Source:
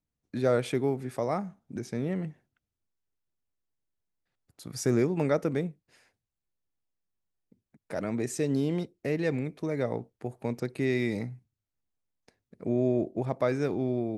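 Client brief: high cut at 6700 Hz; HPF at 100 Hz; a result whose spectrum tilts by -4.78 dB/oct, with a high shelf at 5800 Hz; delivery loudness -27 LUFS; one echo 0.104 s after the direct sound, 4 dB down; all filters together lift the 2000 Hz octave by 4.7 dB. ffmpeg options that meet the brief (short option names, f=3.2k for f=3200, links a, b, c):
-af "highpass=100,lowpass=6.7k,equalizer=f=2k:t=o:g=6,highshelf=f=5.8k:g=-5,aecho=1:1:104:0.631,volume=2dB"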